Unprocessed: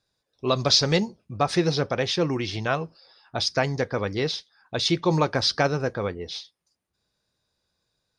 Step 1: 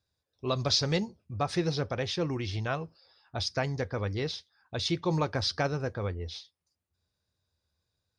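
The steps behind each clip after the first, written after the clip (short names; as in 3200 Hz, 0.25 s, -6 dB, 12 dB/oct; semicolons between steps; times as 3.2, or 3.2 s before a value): bell 83 Hz +14.5 dB 0.73 oct; gain -7.5 dB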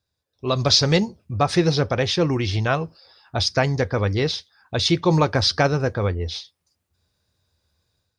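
AGC gain up to 8.5 dB; gain +2 dB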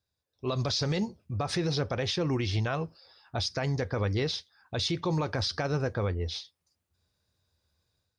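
limiter -15.5 dBFS, peak gain reduction 11 dB; gain -5.5 dB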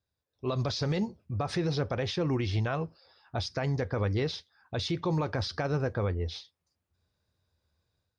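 high shelf 3700 Hz -8.5 dB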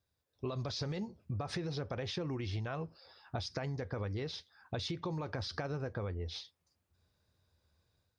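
compressor 10:1, threshold -37 dBFS, peak gain reduction 12.5 dB; gain +2 dB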